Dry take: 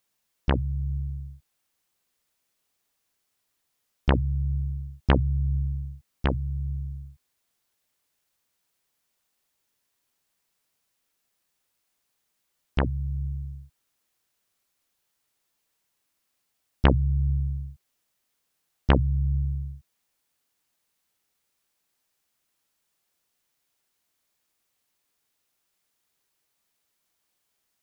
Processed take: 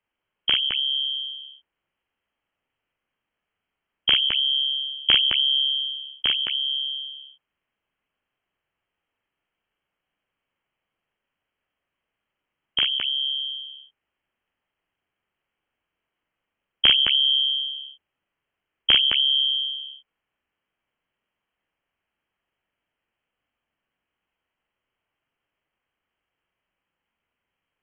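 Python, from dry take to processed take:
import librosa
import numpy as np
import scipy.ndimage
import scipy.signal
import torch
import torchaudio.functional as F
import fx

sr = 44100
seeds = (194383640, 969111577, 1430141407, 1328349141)

y = fx.echo_multitap(x, sr, ms=(42, 212), db=(-4.5, -4.5))
y = fx.freq_invert(y, sr, carrier_hz=3200)
y = y * librosa.db_to_amplitude(-1.0)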